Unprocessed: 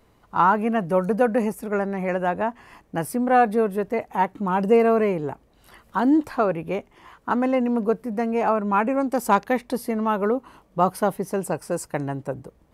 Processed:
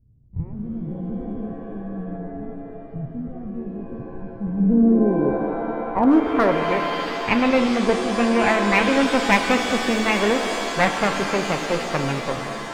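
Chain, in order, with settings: comb filter that takes the minimum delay 0.34 ms; low-pass sweep 120 Hz -> 2.8 kHz, 4.33–7.04 s; one-sided clip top -13 dBFS; pitch-shifted reverb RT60 2.9 s, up +7 st, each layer -2 dB, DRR 6 dB; trim +2 dB

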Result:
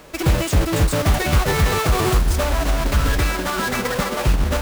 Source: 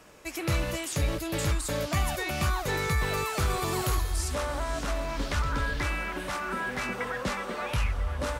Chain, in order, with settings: square wave that keeps the level; time stretch by phase-locked vocoder 0.55×; trim +7 dB

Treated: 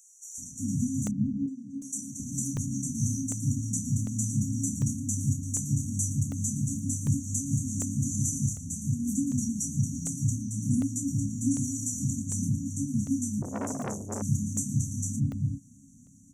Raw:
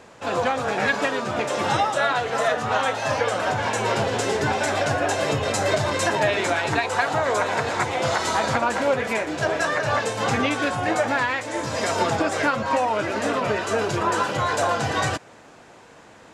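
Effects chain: 8.08–8.62 s: peaking EQ 280 Hz -10 dB 0.94 oct; FFT band-reject 280–5700 Hz; gain riding within 4 dB 0.5 s; 1.08–1.82 s: vowel filter u; doubling 29 ms -7.5 dB; bands offset in time highs, lows 380 ms, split 2.5 kHz; crackling interface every 0.75 s, samples 64, zero, from 0.32 s; 13.42–14.22 s: transformer saturation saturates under 1.2 kHz; trim +3 dB

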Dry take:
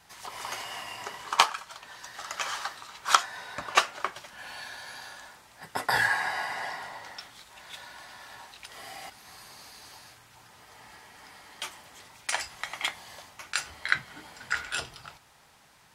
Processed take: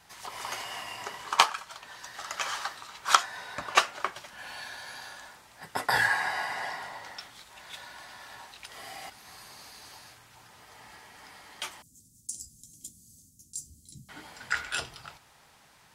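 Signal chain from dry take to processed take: 11.82–14.09 s: elliptic band-stop 240–6900 Hz, stop band 80 dB

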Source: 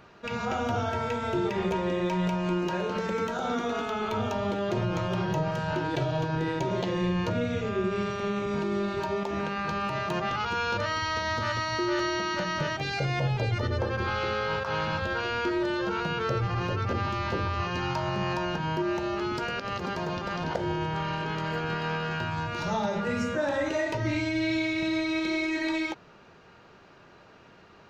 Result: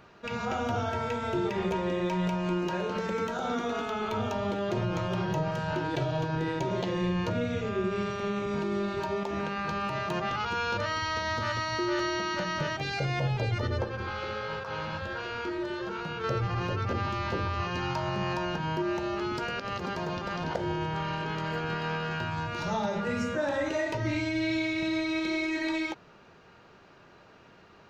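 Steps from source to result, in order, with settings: 13.84–16.24 s: flange 1.4 Hz, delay 4.7 ms, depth 9.6 ms, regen -63%; trim -1.5 dB

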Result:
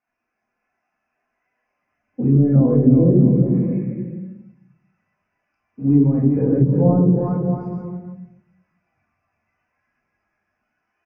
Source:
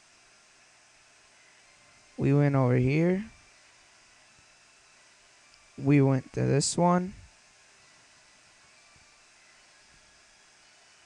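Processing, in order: waveshaping leveller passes 1; boxcar filter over 11 samples; in parallel at -1.5 dB: compressor with a negative ratio -26 dBFS, ratio -0.5; on the sum: peaking EQ 88 Hz +6.5 dB 0.36 oct; bouncing-ball echo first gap 360 ms, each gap 0.75×, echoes 5; simulated room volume 530 m³, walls mixed, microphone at 1.9 m; low-pass that closes with the level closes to 840 Hz, closed at -7 dBFS; bass shelf 60 Hz -11.5 dB; hum notches 60/120/180 Hz; spectral contrast expander 1.5:1

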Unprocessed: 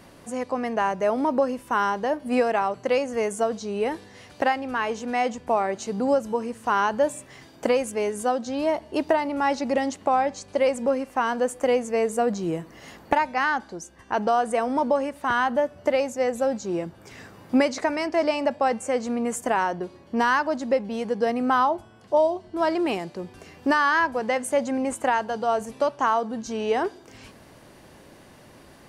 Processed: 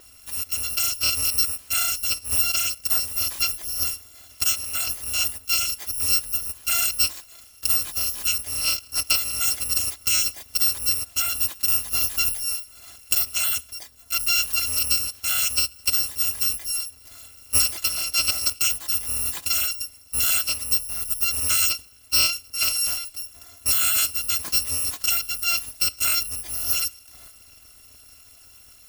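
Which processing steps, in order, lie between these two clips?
bit-reversed sample order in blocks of 256 samples; on a send: reverberation RT60 0.40 s, pre-delay 3 ms, DRR 21 dB

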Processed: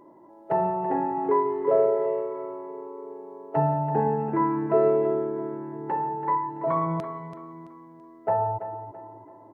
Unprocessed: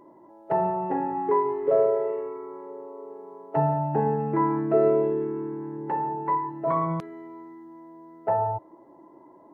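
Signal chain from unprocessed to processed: feedback delay 333 ms, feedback 37%, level -11 dB

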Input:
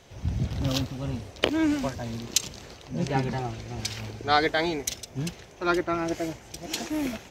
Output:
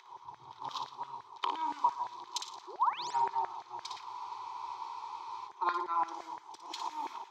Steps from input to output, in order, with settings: painted sound rise, 2.67–3.11 s, 320–8200 Hz -31 dBFS; FFT filter 140 Hz 0 dB, 210 Hz -20 dB, 380 Hz 0 dB, 610 Hz -26 dB, 960 Hz +7 dB, 1.6 kHz -27 dB, 3.7 kHz -11 dB, 7.2 kHz -18 dB, 11 kHz -24 dB; in parallel at -2 dB: compression, threshold -38 dBFS, peak gain reduction 14.5 dB; on the sum: treble shelf 7.7 kHz -6.5 dB; upward compressor, threshold -40 dBFS; on a send: flutter echo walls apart 9.9 m, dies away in 0.49 s; on the sum: LFO high-pass saw down 5.8 Hz 740–1800 Hz; high-pass 71 Hz; band-stop 2.8 kHz, Q 9.8; spectral freeze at 4.06 s, 1.40 s; tape noise reduction on one side only decoder only; trim -1.5 dB

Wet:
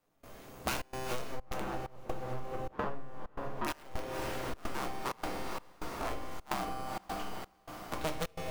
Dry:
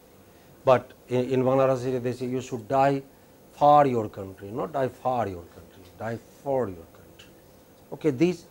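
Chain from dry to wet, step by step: cycle switcher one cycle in 2, inverted; 1.22–3.83 s: tape spacing loss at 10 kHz 43 dB; feedback comb 130 Hz, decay 1.6 s, mix 80%; integer overflow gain 25.5 dB; peaking EQ 1.2 kHz +3.5 dB 0.35 oct; echo that smears into a reverb 494 ms, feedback 48%, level -11 dB; reverberation RT60 0.60 s, pre-delay 6 ms, DRR 2.5 dB; trance gate "..xxxxx.xxxx.xxx" 129 bpm -24 dB; compression 12:1, threshold -43 dBFS, peak gain reduction 20.5 dB; trim +11 dB

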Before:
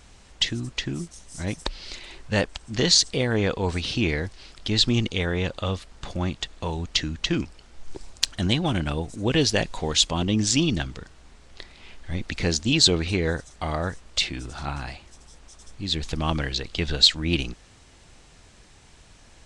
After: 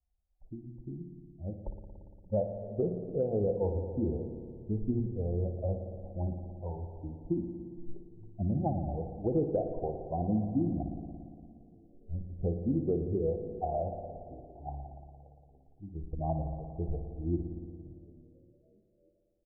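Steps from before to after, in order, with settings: expander on every frequency bin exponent 2; steep low-pass 760 Hz 72 dB/octave; bass shelf 380 Hz -10 dB; hum notches 60/120/180/240/300/360/420 Hz; compression, threshold -34 dBFS, peak gain reduction 9 dB; on a send: frequency-shifting echo 288 ms, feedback 65%, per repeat -110 Hz, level -21 dB; on the sum: spring tank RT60 2.3 s, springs 57 ms, chirp 40 ms, DRR 5.5 dB; trim +8 dB

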